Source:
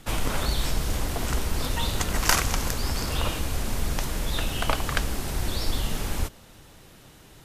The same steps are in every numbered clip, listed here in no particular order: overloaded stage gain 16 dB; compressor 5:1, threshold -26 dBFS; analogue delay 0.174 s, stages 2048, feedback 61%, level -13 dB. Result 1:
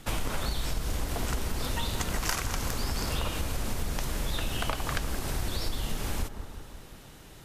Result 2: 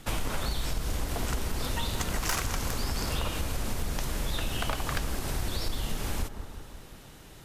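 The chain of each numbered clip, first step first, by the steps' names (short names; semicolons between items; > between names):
analogue delay > compressor > overloaded stage; overloaded stage > analogue delay > compressor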